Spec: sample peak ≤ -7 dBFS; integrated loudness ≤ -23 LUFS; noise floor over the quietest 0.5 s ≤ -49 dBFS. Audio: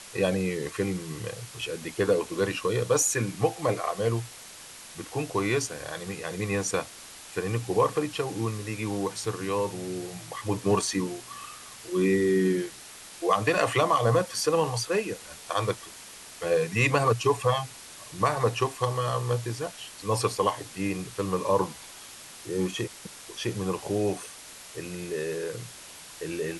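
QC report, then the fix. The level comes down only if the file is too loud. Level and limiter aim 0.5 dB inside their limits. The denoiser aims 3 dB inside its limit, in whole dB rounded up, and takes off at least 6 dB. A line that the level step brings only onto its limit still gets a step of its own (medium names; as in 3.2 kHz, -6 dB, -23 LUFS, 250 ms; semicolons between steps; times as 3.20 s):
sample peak -10.0 dBFS: pass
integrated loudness -28.0 LUFS: pass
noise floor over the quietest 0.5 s -46 dBFS: fail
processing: noise reduction 6 dB, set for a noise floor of -46 dBFS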